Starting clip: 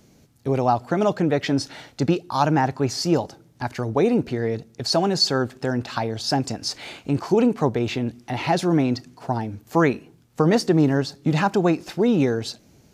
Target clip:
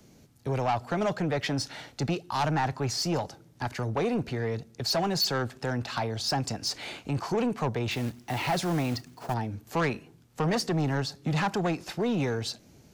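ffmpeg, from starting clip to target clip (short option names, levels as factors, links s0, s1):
-filter_complex "[0:a]acrossover=split=220|450|1900[s0][s1][s2][s3];[s1]acompressor=threshold=0.00891:ratio=6[s4];[s0][s4][s2][s3]amix=inputs=4:normalize=0,asettb=1/sr,asplit=3[s5][s6][s7];[s5]atrim=end=7.914[s8];[s6]atrim=start=7.91:end=9.34,asetpts=PTS-STARTPTS,afade=t=in:d=0.004:c=qsin,afade=t=out:st=1.426:d=0.004:c=qsin,acrusher=bits=3:mode=log:mix=0:aa=0.000001[s9];[s7]atrim=start=9.336[s10];[s8][s9]acrossfade=d=0.004:c1=hsin:c2=qsin[s11];[s11][s10]acrossfade=d=0.004:c1=qsin:c2=hsin,asoftclip=type=tanh:threshold=0.1,volume=0.841"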